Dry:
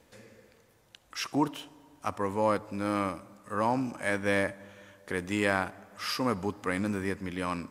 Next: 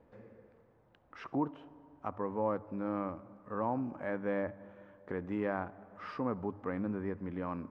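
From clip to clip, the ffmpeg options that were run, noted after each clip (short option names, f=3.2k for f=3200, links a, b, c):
-filter_complex "[0:a]lowpass=1.1k,bandreject=f=50:t=h:w=6,bandreject=f=100:t=h:w=6,asplit=2[a][b];[b]acompressor=threshold=-37dB:ratio=6,volume=1.5dB[c];[a][c]amix=inputs=2:normalize=0,volume=-7.5dB"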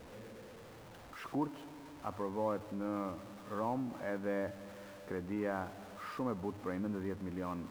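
-af "aeval=exprs='val(0)+0.5*0.00531*sgn(val(0))':c=same,volume=-3dB"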